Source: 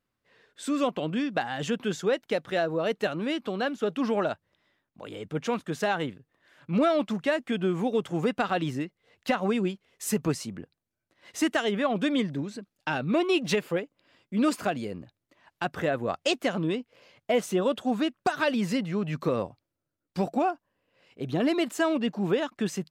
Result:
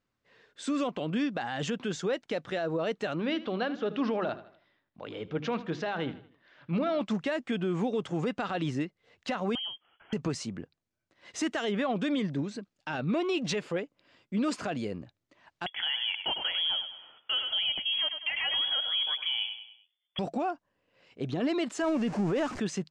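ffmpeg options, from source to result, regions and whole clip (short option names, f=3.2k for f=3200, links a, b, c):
-filter_complex "[0:a]asettb=1/sr,asplit=3[a][b][c];[a]atrim=end=3.204[d];[b]atrim=start=3.2:end=7.01,asetpts=PTS-STARTPTS,afade=t=in:d=0.004:c=qsin,afade=t=out:st=3.806:d=0.004:c=qsin,lowpass=f=4.9k:w=0.5412,lowpass=f=4.9k:w=1.3066,bandreject=f=50:t=h:w=6,bandreject=f=100:t=h:w=6,bandreject=f=150:t=h:w=6,bandreject=f=200:t=h:w=6,bandreject=f=250:t=h:w=6,bandreject=f=300:t=h:w=6,bandreject=f=350:t=h:w=6,aecho=1:1:78|156|234|312:0.126|0.0541|0.0233|0.01,atrim=end_sample=168021[e];[c]atrim=start=7.006[f];[d][e]acrossfade=d=0.004:c1=hsin:c2=qsin[g];[g][f]acrossfade=d=0.004:c1=qsin:c2=hsin,asettb=1/sr,asplit=3[h][i][j];[h]atrim=end=9.554[k];[i]atrim=start=9.55:end=10.13,asetpts=PTS-STARTPTS,afade=t=in:d=0.004:c=qsin,afade=t=out:st=0.576:d=0.004:c=qsin,acompressor=threshold=-36dB:ratio=3:attack=3.2:release=140:knee=1:detection=peak,lowpass=f=2.9k:t=q:w=0.5098,lowpass=f=2.9k:t=q:w=0.6013,lowpass=f=2.9k:t=q:w=0.9,lowpass=f=2.9k:t=q:w=2.563,afreqshift=-3400[l];[j]atrim=start=10.126[m];[k][l]acrossfade=d=0.004:c1=hsin:c2=qsin[n];[n][m]acrossfade=d=0.004:c1=qsin:c2=hsin,asettb=1/sr,asplit=3[o][p][q];[o]atrim=end=15.664[r];[p]atrim=start=15.66:end=20.19,asetpts=PTS-STARTPTS,afade=t=in:d=0.004:c=qsin,afade=t=out:st=4.526:d=0.004:c=qsin,aecho=1:1:100|200|300|400:0.251|0.108|0.0464|0.02,atrim=end_sample=199773,lowpass=f=3k:t=q:w=0.5098,lowpass=f=3k:t=q:w=0.6013,lowpass=f=3k:t=q:w=0.9,lowpass=f=3k:t=q:w=2.563,afreqshift=-3500[s];[q]atrim=start=20.186[t];[r][s]acrossfade=d=0.004:c1=hsin:c2=qsin[u];[u][t]acrossfade=d=0.004:c1=qsin:c2=hsin,asettb=1/sr,asplit=3[v][w][x];[v]atrim=end=21.824[y];[w]atrim=start=21.82:end=22.6,asetpts=PTS-STARTPTS,afade=t=in:d=0.004:c=qsin,afade=t=out:st=0.776:d=0.004:c=qsin,aeval=exprs='val(0)+0.5*0.0237*sgn(val(0))':c=same,deesser=0.75,equalizer=f=3.6k:t=o:w=0.61:g=-7.5[z];[x]atrim=start=22.596[aa];[y][z]acrossfade=d=0.004:c1=hsin:c2=qsin[ab];[ab][aa]acrossfade=d=0.004:c1=qsin:c2=hsin,lowpass=f=7.7k:w=0.5412,lowpass=f=7.7k:w=1.3066,alimiter=limit=-22dB:level=0:latency=1:release=34"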